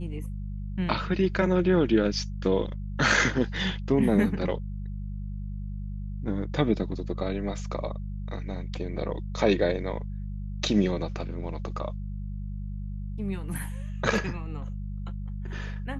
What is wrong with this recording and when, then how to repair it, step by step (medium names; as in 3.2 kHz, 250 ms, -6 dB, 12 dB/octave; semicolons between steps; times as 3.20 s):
hum 50 Hz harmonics 4 -34 dBFS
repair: de-hum 50 Hz, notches 4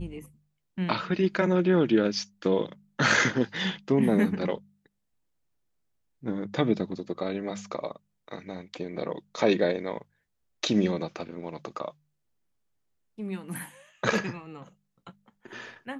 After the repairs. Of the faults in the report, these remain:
nothing left